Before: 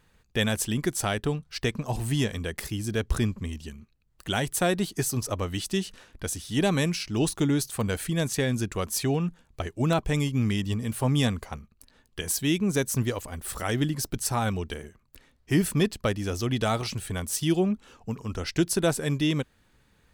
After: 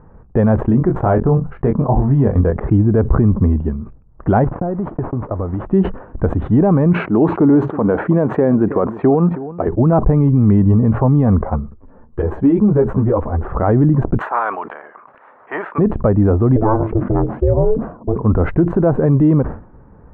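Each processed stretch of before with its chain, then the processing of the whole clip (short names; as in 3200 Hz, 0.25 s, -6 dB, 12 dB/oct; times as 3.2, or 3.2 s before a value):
0.63–2.61 level quantiser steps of 16 dB + doubler 22 ms -6 dB
4.44–5.66 delta modulation 32 kbps, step -38 dBFS + gate -36 dBFS, range -33 dB + compressor 10:1, threshold -37 dBFS
6.93–9.68 HPF 230 Hz + echo 0.32 s -20 dB
11.45–13.43 bell 490 Hz +2.5 dB 0.39 oct + compressor 2.5:1, threshold -26 dBFS + ensemble effect
14.18–15.78 spectral limiter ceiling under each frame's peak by 16 dB + HPF 1300 Hz + upward compressor, threshold -36 dBFS
16.56–18.16 ring modulator 220 Hz + tape spacing loss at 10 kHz 29 dB
whole clip: inverse Chebyshev low-pass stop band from 4700 Hz, stop band 70 dB; maximiser +24.5 dB; sustainer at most 120 dB/s; gain -4 dB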